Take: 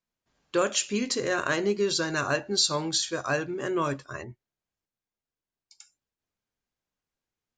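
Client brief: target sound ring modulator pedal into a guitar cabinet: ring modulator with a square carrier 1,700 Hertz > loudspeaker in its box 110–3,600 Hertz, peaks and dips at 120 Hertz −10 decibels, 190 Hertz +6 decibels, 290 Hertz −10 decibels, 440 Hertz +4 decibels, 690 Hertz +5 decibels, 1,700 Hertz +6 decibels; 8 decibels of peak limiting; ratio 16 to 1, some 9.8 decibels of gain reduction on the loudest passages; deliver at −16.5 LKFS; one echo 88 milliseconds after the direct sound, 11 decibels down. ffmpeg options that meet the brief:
ffmpeg -i in.wav -af "acompressor=threshold=-30dB:ratio=16,alimiter=level_in=4dB:limit=-24dB:level=0:latency=1,volume=-4dB,aecho=1:1:88:0.282,aeval=exprs='val(0)*sgn(sin(2*PI*1700*n/s))':channel_layout=same,highpass=110,equalizer=frequency=120:width_type=q:width=4:gain=-10,equalizer=frequency=190:width_type=q:width=4:gain=6,equalizer=frequency=290:width_type=q:width=4:gain=-10,equalizer=frequency=440:width_type=q:width=4:gain=4,equalizer=frequency=690:width_type=q:width=4:gain=5,equalizer=frequency=1700:width_type=q:width=4:gain=6,lowpass=frequency=3600:width=0.5412,lowpass=frequency=3600:width=1.3066,volume=18.5dB" out.wav

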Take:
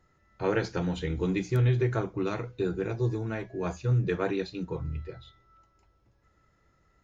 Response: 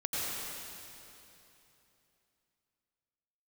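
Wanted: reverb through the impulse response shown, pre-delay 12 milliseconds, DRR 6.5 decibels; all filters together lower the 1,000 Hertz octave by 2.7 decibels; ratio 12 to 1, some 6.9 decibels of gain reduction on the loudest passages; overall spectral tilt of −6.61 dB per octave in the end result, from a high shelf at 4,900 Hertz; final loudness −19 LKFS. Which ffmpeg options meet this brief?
-filter_complex "[0:a]equalizer=frequency=1000:width_type=o:gain=-3.5,highshelf=frequency=4900:gain=-4.5,acompressor=threshold=-27dB:ratio=12,asplit=2[link_01][link_02];[1:a]atrim=start_sample=2205,adelay=12[link_03];[link_02][link_03]afir=irnorm=-1:irlink=0,volume=-13dB[link_04];[link_01][link_04]amix=inputs=2:normalize=0,volume=14.5dB"

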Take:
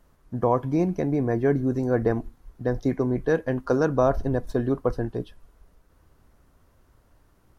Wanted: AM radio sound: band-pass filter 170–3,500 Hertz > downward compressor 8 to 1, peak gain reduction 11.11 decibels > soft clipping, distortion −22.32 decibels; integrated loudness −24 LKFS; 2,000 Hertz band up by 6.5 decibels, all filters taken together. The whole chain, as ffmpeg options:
ffmpeg -i in.wav -af "highpass=170,lowpass=3500,equalizer=frequency=2000:width_type=o:gain=9,acompressor=threshold=-25dB:ratio=8,asoftclip=threshold=-17dB,volume=8dB" out.wav

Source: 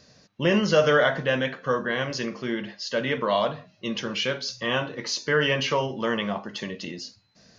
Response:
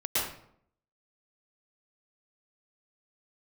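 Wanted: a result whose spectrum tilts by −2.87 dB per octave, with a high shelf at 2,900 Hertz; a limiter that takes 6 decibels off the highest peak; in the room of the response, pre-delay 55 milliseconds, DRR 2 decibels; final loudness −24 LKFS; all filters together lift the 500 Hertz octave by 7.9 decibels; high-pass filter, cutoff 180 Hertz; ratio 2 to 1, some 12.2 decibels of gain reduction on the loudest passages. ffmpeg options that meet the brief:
-filter_complex "[0:a]highpass=180,equalizer=frequency=500:width_type=o:gain=9,highshelf=frequency=2900:gain=8.5,acompressor=threshold=-31dB:ratio=2,alimiter=limit=-20dB:level=0:latency=1,asplit=2[link_01][link_02];[1:a]atrim=start_sample=2205,adelay=55[link_03];[link_02][link_03]afir=irnorm=-1:irlink=0,volume=-11.5dB[link_04];[link_01][link_04]amix=inputs=2:normalize=0,volume=4.5dB"

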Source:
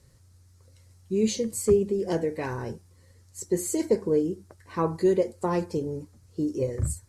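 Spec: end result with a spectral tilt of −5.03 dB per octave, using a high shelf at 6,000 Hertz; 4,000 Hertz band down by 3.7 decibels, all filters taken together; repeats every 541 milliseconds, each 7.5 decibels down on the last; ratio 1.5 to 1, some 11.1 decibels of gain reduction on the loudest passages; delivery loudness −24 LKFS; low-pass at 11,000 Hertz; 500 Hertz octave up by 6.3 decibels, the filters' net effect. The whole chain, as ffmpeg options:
ffmpeg -i in.wav -af "lowpass=11000,equalizer=frequency=500:width_type=o:gain=8,equalizer=frequency=4000:width_type=o:gain=-7,highshelf=frequency=6000:gain=6,acompressor=threshold=-42dB:ratio=1.5,aecho=1:1:541|1082|1623|2164|2705:0.422|0.177|0.0744|0.0312|0.0131,volume=7.5dB" out.wav

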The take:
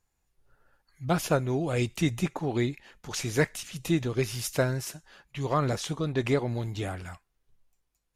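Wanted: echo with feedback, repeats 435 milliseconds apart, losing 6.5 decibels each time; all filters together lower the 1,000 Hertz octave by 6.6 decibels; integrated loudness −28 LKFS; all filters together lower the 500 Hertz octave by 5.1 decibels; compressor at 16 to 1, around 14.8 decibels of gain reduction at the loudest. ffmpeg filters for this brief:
ffmpeg -i in.wav -af "equalizer=frequency=500:width_type=o:gain=-5,equalizer=frequency=1000:width_type=o:gain=-7.5,acompressor=threshold=-37dB:ratio=16,aecho=1:1:435|870|1305|1740|2175|2610:0.473|0.222|0.105|0.0491|0.0231|0.0109,volume=13dB" out.wav

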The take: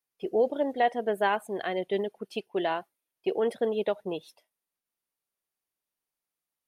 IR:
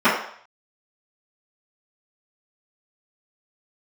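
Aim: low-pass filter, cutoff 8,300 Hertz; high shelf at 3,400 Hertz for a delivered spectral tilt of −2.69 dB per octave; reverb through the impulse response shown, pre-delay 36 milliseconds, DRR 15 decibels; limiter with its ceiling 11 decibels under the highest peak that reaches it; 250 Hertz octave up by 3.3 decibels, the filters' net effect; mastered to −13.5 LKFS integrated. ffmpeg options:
-filter_complex "[0:a]lowpass=8300,equalizer=frequency=250:width_type=o:gain=4.5,highshelf=frequency=3400:gain=-7.5,alimiter=level_in=0.5dB:limit=-24dB:level=0:latency=1,volume=-0.5dB,asplit=2[link_01][link_02];[1:a]atrim=start_sample=2205,adelay=36[link_03];[link_02][link_03]afir=irnorm=-1:irlink=0,volume=-38.5dB[link_04];[link_01][link_04]amix=inputs=2:normalize=0,volume=21.5dB"

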